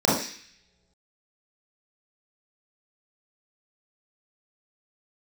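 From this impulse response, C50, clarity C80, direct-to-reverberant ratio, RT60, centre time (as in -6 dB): 2.0 dB, 7.5 dB, -7.0 dB, not exponential, 52 ms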